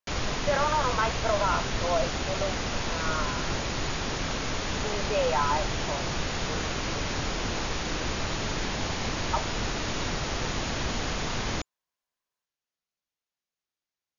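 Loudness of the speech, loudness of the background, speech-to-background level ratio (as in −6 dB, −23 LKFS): −30.5 LKFS, −30.5 LKFS, 0.0 dB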